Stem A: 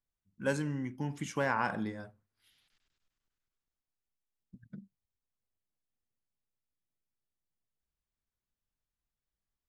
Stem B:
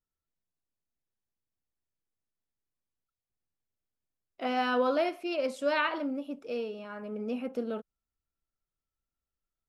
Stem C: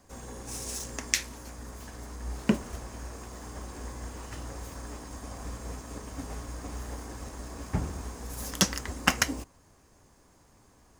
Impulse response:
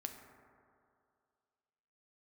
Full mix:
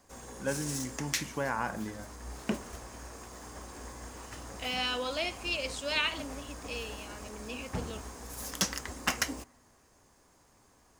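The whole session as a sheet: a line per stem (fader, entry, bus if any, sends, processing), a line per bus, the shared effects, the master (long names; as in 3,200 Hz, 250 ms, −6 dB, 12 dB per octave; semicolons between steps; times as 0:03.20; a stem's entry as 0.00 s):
−1.0 dB, 0.00 s, no send, spectral tilt −1.5 dB per octave
−7.0 dB, 0.20 s, no send, flat-topped bell 4,600 Hz +15 dB 2.4 octaves
−1.5 dB, 0.00 s, send −20 dB, soft clipping −17 dBFS, distortion −10 dB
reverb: on, RT60 2.4 s, pre-delay 4 ms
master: low-shelf EQ 310 Hz −6.5 dB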